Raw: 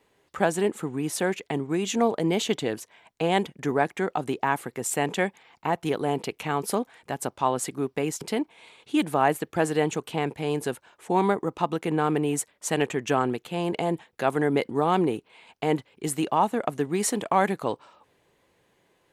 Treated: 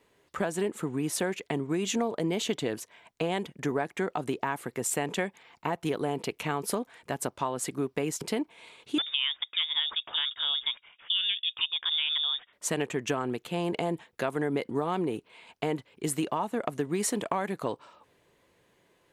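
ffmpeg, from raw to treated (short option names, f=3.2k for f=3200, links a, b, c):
-filter_complex "[0:a]asettb=1/sr,asplit=3[a][b][c];[a]atrim=end=8.984[d];[b]atrim=start=8.98:end=12.53,asetpts=PTS-STARTPTS,afade=t=in:d=0.004:c=qsin,afade=t=out:st=3.546:d=0.004:c=qsin,lowpass=f=3.2k:t=q:w=0.5098,lowpass=f=3.2k:t=q:w=0.6013,lowpass=f=3.2k:t=q:w=0.9,lowpass=f=3.2k:t=q:w=2.563,afreqshift=-3800[e];[c]atrim=start=12.526[f];[d][e]acrossfade=d=0.004:c1=hsin:c2=qsin[g];[g][f]acrossfade=d=0.004:c1=qsin:c2=hsin,acompressor=threshold=-25dB:ratio=6,bandreject=f=800:w=12"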